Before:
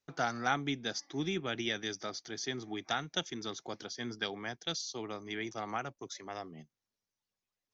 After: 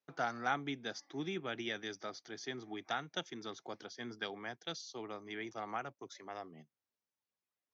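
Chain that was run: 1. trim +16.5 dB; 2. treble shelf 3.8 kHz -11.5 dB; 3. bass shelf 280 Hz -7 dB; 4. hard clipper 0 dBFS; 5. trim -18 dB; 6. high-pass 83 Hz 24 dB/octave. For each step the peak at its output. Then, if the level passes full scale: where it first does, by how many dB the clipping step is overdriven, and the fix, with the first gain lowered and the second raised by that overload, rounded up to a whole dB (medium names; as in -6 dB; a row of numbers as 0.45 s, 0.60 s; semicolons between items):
-1.5 dBFS, -3.0 dBFS, -3.0 dBFS, -3.0 dBFS, -21.0 dBFS, -20.5 dBFS; nothing clips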